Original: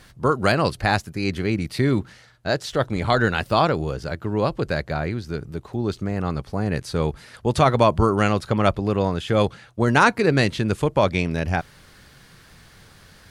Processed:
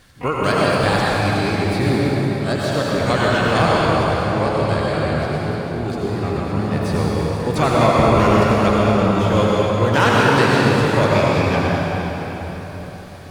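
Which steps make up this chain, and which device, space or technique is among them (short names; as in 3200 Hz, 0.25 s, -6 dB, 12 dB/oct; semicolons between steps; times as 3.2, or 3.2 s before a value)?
shimmer-style reverb (harmoniser +12 st -10 dB; reverb RT60 4.5 s, pre-delay 75 ms, DRR -5.5 dB); gain -2.5 dB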